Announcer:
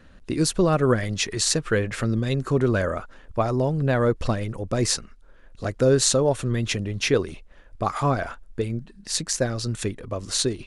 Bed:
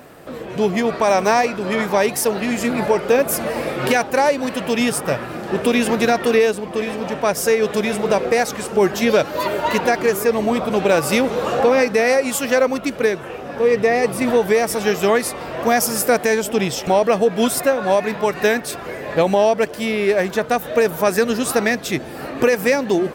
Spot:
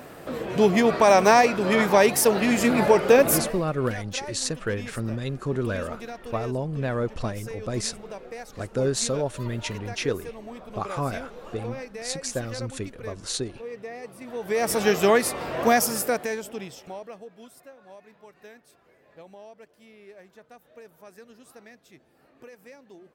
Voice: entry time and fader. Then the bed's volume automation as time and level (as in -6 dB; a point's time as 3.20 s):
2.95 s, -6.0 dB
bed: 3.38 s -0.5 dB
3.65 s -21.5 dB
14.29 s -21.5 dB
14.69 s -2.5 dB
15.71 s -2.5 dB
17.48 s -31 dB